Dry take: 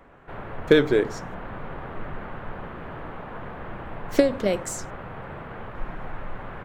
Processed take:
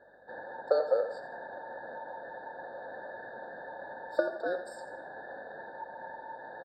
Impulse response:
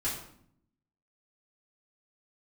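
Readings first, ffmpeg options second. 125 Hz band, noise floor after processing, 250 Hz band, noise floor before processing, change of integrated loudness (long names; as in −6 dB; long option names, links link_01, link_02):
below −25 dB, −49 dBFS, −20.5 dB, −39 dBFS, −9.5 dB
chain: -filter_complex "[0:a]equalizer=frequency=980:width=3.8:gain=-10,aecho=1:1:1.1:0.59,asplit=2[link_01][link_02];[link_02]acompressor=threshold=-32dB:ratio=6,volume=3dB[link_03];[link_01][link_03]amix=inputs=2:normalize=0,aeval=exprs='val(0)*sin(2*PI*900*n/s)':channel_layout=same,aeval=exprs='val(0)+0.00282*(sin(2*PI*50*n/s)+sin(2*PI*2*50*n/s)/2+sin(2*PI*3*50*n/s)/3+sin(2*PI*4*50*n/s)/4+sin(2*PI*5*50*n/s)/5)':channel_layout=same,asplit=3[link_04][link_05][link_06];[link_04]bandpass=frequency=530:width_type=q:width=8,volume=0dB[link_07];[link_05]bandpass=frequency=1840:width_type=q:width=8,volume=-6dB[link_08];[link_06]bandpass=frequency=2480:width_type=q:width=8,volume=-9dB[link_09];[link_07][link_08][link_09]amix=inputs=3:normalize=0,asplit=2[link_10][link_11];[link_11]aecho=0:1:85|170|255|340:0.237|0.0877|0.0325|0.012[link_12];[link_10][link_12]amix=inputs=2:normalize=0,afftfilt=real='re*eq(mod(floor(b*sr/1024/1800),2),0)':imag='im*eq(mod(floor(b*sr/1024/1800),2),0)':win_size=1024:overlap=0.75,volume=5.5dB"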